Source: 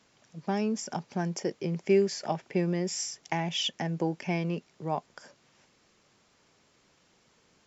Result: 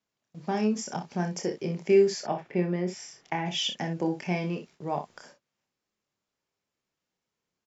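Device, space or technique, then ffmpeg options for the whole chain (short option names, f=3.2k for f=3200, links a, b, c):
slapback doubling: -filter_complex "[0:a]agate=range=-22dB:threshold=-53dB:ratio=16:detection=peak,asettb=1/sr,asplit=3[a][b][c];[a]atrim=end=2.204[d];[b]atrim=start=2.2:end=3.46,asetpts=PTS-STARTPTS,afade=t=in:d=0.004:c=qsin,afade=t=out:st=1.256:d=0.004:c=qsin,bass=f=250:g=-2,treble=f=4k:g=-14[e];[c]atrim=start=3.456[f];[d][e]acrossfade=d=0.004:c1=hsin:c2=qsin[g];[g][f]acrossfade=d=0.004:c1=qsin:c2=hsin,asplit=3[h][i][j];[i]adelay=28,volume=-6dB[k];[j]adelay=61,volume=-10dB[l];[h][k][l]amix=inputs=3:normalize=0"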